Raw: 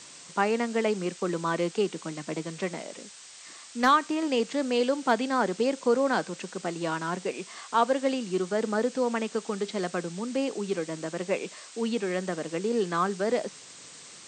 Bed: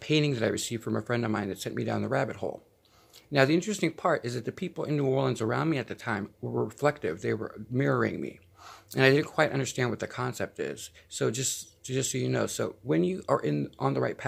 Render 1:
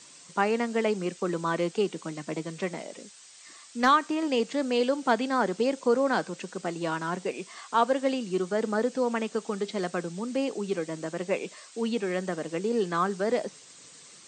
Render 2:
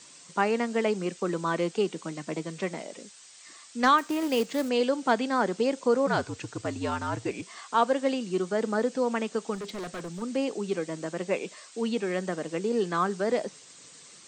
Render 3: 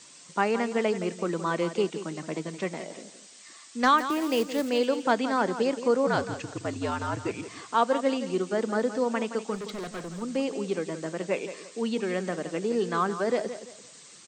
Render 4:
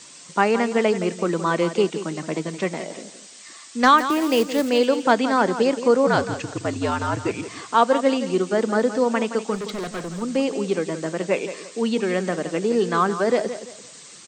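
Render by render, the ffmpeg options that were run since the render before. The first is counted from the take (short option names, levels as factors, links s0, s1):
-af "afftdn=nr=6:nf=-48"
-filter_complex "[0:a]asettb=1/sr,asplit=3[s0][s1][s2];[s0]atrim=end=3.984[s3];[s1]atrim=start=3.98:end=4.69,asetpts=PTS-STARTPTS,afade=t=in:d=0.004:c=qsin,afade=t=out:st=0.706:d=0.004:c=qsin,acrusher=bits=4:mode=log:mix=0:aa=0.000001[s4];[s2]atrim=start=4.686[s5];[s3][s4]acrossfade=d=0.004:c1=hsin:c2=qsin[s6];[s6][s5]acrossfade=d=0.004:c1=qsin:c2=hsin,asplit=3[s7][s8][s9];[s7]afade=t=out:st=6.06:d=0.02[s10];[s8]afreqshift=-67,afade=t=in:st=6.06:d=0.02,afade=t=out:st=7.41:d=0.02[s11];[s9]afade=t=in:st=7.41:d=0.02[s12];[s10][s11][s12]amix=inputs=3:normalize=0,asettb=1/sr,asplit=3[s13][s14][s15];[s13]atrim=end=9.554[s16];[s14]atrim=start=9.55:end=10.22,asetpts=PTS-STARTPTS,afade=t=in:d=0.004:c=qsin,afade=t=out:st=0.666:d=0.004:c=qsin,volume=44.7,asoftclip=hard,volume=0.0224[s17];[s15]atrim=start=10.216[s18];[s16][s17]acrossfade=d=0.004:c1=hsin:c2=qsin[s19];[s19][s18]acrossfade=d=0.004:c1=qsin:c2=hsin"
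-af "aecho=1:1:170|340|510:0.266|0.0825|0.0256"
-af "volume=2.11"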